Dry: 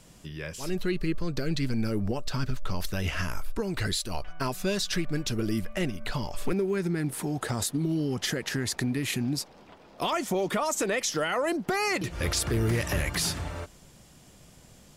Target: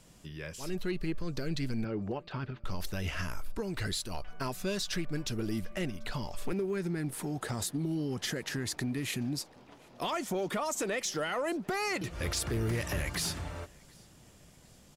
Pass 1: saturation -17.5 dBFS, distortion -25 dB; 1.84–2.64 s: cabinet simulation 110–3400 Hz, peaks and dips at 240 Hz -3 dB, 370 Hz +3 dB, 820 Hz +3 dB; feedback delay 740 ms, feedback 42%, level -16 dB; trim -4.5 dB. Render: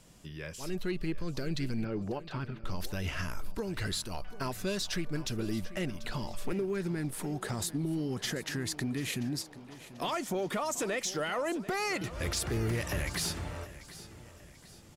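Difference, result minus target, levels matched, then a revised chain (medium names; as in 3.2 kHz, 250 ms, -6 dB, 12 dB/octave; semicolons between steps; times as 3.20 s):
echo-to-direct +11.5 dB
saturation -17.5 dBFS, distortion -25 dB; 1.84–2.64 s: cabinet simulation 110–3400 Hz, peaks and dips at 240 Hz -3 dB, 370 Hz +3 dB, 820 Hz +3 dB; feedback delay 740 ms, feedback 42%, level -27.5 dB; trim -4.5 dB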